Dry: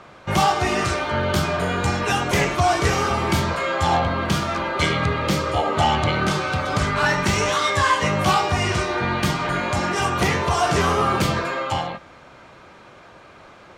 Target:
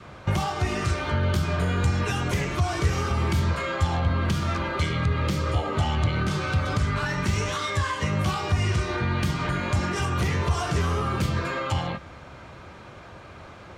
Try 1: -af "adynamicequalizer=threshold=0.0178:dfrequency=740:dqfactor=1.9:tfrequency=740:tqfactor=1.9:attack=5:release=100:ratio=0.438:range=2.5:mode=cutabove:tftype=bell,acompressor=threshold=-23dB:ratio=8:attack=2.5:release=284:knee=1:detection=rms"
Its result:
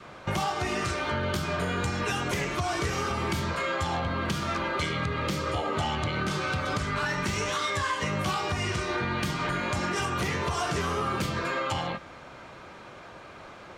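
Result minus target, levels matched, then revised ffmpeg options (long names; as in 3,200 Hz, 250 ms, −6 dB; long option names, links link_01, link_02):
125 Hz band −5.5 dB
-af "adynamicequalizer=threshold=0.0178:dfrequency=740:dqfactor=1.9:tfrequency=740:tqfactor=1.9:attack=5:release=100:ratio=0.438:range=2.5:mode=cutabove:tftype=bell,acompressor=threshold=-23dB:ratio=8:attack=2.5:release=284:knee=1:detection=rms,equalizer=frequency=75:width=0.67:gain=11.5"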